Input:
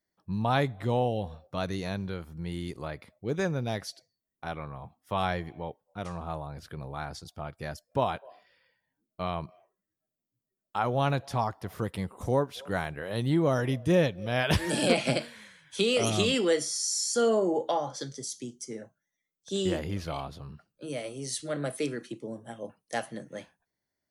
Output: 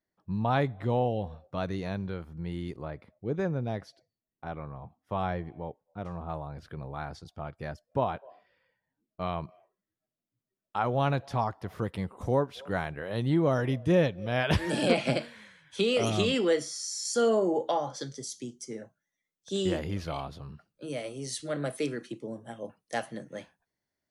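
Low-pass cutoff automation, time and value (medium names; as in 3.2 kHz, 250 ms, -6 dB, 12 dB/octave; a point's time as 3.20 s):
low-pass 6 dB/octave
2.2 kHz
from 2.76 s 1 kHz
from 6.29 s 2.3 kHz
from 7.71 s 1.4 kHz
from 9.22 s 3.5 kHz
from 17.05 s 7.5 kHz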